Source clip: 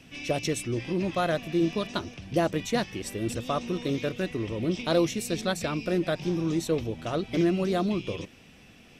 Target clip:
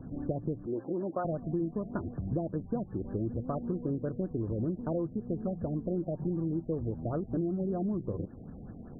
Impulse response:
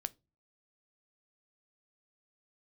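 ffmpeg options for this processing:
-filter_complex "[0:a]asettb=1/sr,asplit=3[a][b][c];[a]atrim=end=0.664[d];[b]atrim=start=0.66:end=1.25,asetpts=PTS-STARTPTS,afade=t=in:d=0.004:c=qsin,afade=t=out:st=0.586:d=0.004:c=qsin,highpass=370[e];[c]atrim=start=1.246[f];[d][e]acrossfade=d=0.004:c1=hsin:c2=qsin[g];[g][f]acrossfade=d=0.004:c1=qsin:c2=hsin,lowshelf=f=480:g=12,acompressor=threshold=-31dB:ratio=5,afftfilt=real='re*lt(b*sr/1024,730*pow(1800/730,0.5+0.5*sin(2*PI*5.2*pts/sr)))':imag='im*lt(b*sr/1024,730*pow(1800/730,0.5+0.5*sin(2*PI*5.2*pts/sr)))':win_size=1024:overlap=0.75"

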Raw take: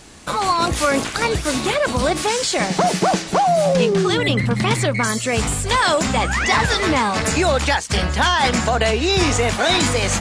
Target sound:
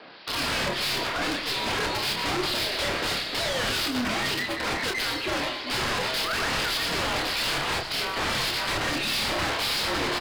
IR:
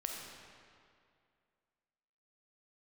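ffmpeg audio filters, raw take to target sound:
-filter_complex "[0:a]highpass=f=460:w=0.5412,highpass=f=460:w=1.3066,aresample=11025,aeval=exprs='(mod(7.5*val(0)+1,2)-1)/7.5':c=same,aresample=44100,acrossover=split=2500[a][b];[a]aeval=exprs='val(0)*(1-0.7/2+0.7/2*cos(2*PI*1.7*n/s))':c=same[c];[b]aeval=exprs='val(0)*(1-0.7/2-0.7/2*cos(2*PI*1.7*n/s))':c=same[d];[c][d]amix=inputs=2:normalize=0,afreqshift=-140,volume=29dB,asoftclip=hard,volume=-29dB,asplit=2[e][f];[f]adelay=28,volume=-5dB[g];[e][g]amix=inputs=2:normalize=0,asplit=2[h][i];[1:a]atrim=start_sample=2205,adelay=116[j];[i][j]afir=irnorm=-1:irlink=0,volume=-9.5dB[k];[h][k]amix=inputs=2:normalize=0,volume=2.5dB"

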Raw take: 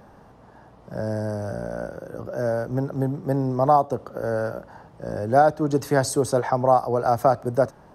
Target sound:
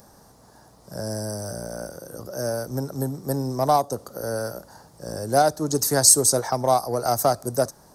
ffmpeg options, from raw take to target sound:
-af "aeval=exprs='0.531*(cos(1*acos(clip(val(0)/0.531,-1,1)))-cos(1*PI/2))+0.0119*(cos(7*acos(clip(val(0)/0.531,-1,1)))-cos(7*PI/2))':c=same,aexciter=amount=7.7:drive=6.1:freq=4.2k,volume=-2dB"

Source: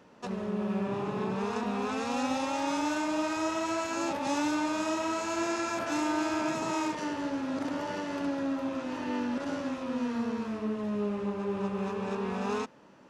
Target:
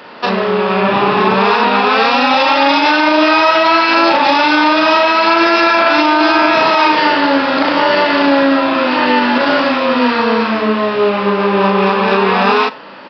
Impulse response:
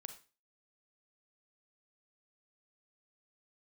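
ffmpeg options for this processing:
-filter_complex "[0:a]highpass=f=1k:p=1,asplit=2[a][b];[b]adelay=36,volume=-3dB[c];[a][c]amix=inputs=2:normalize=0,asplit=2[d][e];[1:a]atrim=start_sample=2205[f];[e][f]afir=irnorm=-1:irlink=0,volume=-4.5dB[g];[d][g]amix=inputs=2:normalize=0,aresample=11025,aresample=44100,alimiter=level_in=25.5dB:limit=-1dB:release=50:level=0:latency=1,volume=-1dB"

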